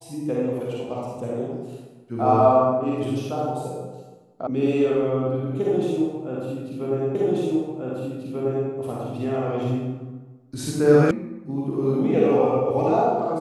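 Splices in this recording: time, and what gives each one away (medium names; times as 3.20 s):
4.47 s: sound stops dead
7.15 s: repeat of the last 1.54 s
11.11 s: sound stops dead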